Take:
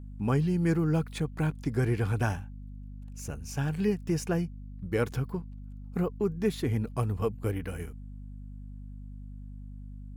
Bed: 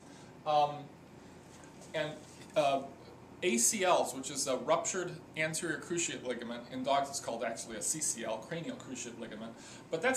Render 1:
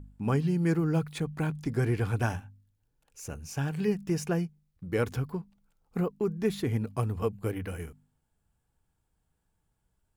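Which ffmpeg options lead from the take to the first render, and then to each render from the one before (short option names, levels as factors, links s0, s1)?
-af "bandreject=f=50:t=h:w=4,bandreject=f=100:t=h:w=4,bandreject=f=150:t=h:w=4,bandreject=f=200:t=h:w=4,bandreject=f=250:t=h:w=4"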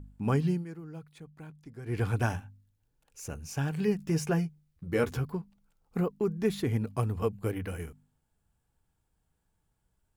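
-filter_complex "[0:a]asettb=1/sr,asplit=3[s0][s1][s2];[s0]atrim=end=3.984[s3];[s1]atrim=start=3.98:end=5.25,asetpts=PTS-STARTPTS,afade=t=in:d=0.004:c=qsin,afade=t=out:st=1.266:d=0.004:c=qsin,asplit=2[s4][s5];[s5]adelay=13,volume=0.501[s6];[s4][s6]amix=inputs=2:normalize=0,atrim=end_sample=56007[s7];[s2]atrim=start=5.246[s8];[s3][s7]acrossfade=d=0.004:c1=hsin:c2=qsin[s9];[s9][s8]acrossfade=d=0.004:c1=qsin:c2=hsin,asplit=3[s10][s11][s12];[s10]atrim=end=0.65,asetpts=PTS-STARTPTS,afade=t=out:st=0.51:d=0.14:silence=0.149624[s13];[s11]atrim=start=0.65:end=1.85,asetpts=PTS-STARTPTS,volume=0.15[s14];[s12]atrim=start=1.85,asetpts=PTS-STARTPTS,afade=t=in:d=0.14:silence=0.149624[s15];[s13][s14][s15]concat=n=3:v=0:a=1"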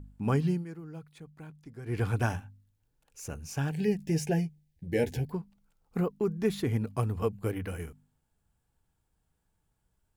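-filter_complex "[0:a]asettb=1/sr,asplit=3[s0][s1][s2];[s0]atrim=end=3.704[s3];[s1]atrim=start=3.7:end=5.31,asetpts=PTS-STARTPTS,afade=t=in:d=0.004:c=qsin,afade=t=out:st=1.606:d=0.004:c=qsin,asuperstop=centerf=1200:order=8:qfactor=1.7[s4];[s2]atrim=start=5.306[s5];[s3][s4]acrossfade=d=0.004:c1=hsin:c2=qsin[s6];[s6][s5]acrossfade=d=0.004:c1=qsin:c2=hsin"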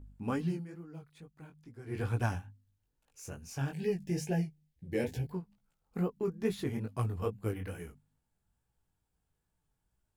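-af "aeval=exprs='0.178*(cos(1*acos(clip(val(0)/0.178,-1,1)))-cos(1*PI/2))+0.0158*(cos(3*acos(clip(val(0)/0.178,-1,1)))-cos(3*PI/2))+0.00355*(cos(5*acos(clip(val(0)/0.178,-1,1)))-cos(5*PI/2))':c=same,flanger=delay=16.5:depth=5.9:speed=2.3"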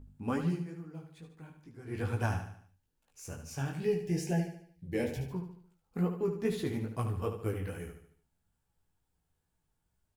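-filter_complex "[0:a]asplit=2[s0][s1];[s1]adelay=12,volume=0.299[s2];[s0][s2]amix=inputs=2:normalize=0,asplit=2[s3][s4];[s4]aecho=0:1:74|148|222|296|370:0.376|0.165|0.0728|0.032|0.0141[s5];[s3][s5]amix=inputs=2:normalize=0"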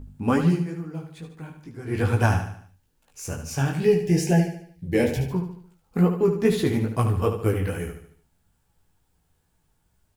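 -af "volume=3.76"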